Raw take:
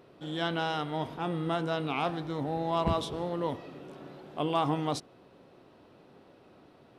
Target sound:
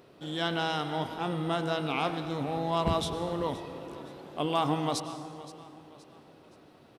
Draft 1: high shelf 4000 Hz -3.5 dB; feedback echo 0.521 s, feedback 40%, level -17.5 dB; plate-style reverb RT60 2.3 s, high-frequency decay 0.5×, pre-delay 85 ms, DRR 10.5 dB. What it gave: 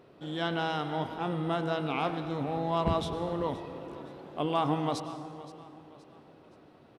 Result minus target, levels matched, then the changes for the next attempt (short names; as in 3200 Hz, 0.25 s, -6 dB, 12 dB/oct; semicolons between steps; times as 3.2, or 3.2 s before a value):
8000 Hz band -7.5 dB
change: high shelf 4000 Hz +7 dB